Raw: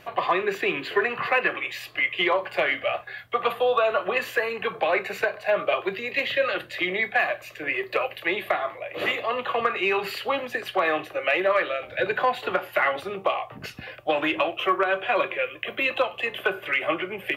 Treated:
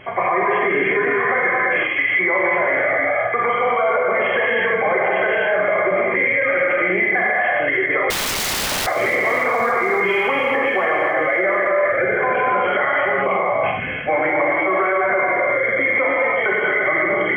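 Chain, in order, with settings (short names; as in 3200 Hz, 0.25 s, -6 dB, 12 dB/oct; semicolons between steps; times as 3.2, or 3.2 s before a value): nonlinear frequency compression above 2000 Hz 4:1; non-linear reverb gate 0.38 s flat, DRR -4.5 dB; limiter -17 dBFS, peak gain reduction 11.5 dB; 8.1–8.87 wrapped overs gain 24 dB; thin delay 0.283 s, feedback 70%, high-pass 2200 Hz, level -18.5 dB; gain +7 dB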